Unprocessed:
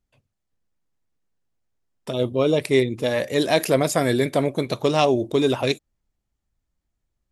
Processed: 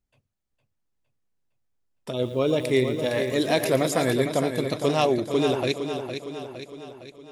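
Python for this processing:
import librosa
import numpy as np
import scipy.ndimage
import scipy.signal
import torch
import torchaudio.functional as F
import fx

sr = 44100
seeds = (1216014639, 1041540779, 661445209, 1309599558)

y = fx.echo_feedback(x, sr, ms=460, feedback_pct=54, wet_db=-8.0)
y = fx.echo_crushed(y, sr, ms=114, feedback_pct=35, bits=7, wet_db=-11, at=(2.11, 4.13))
y = y * 10.0 ** (-3.5 / 20.0)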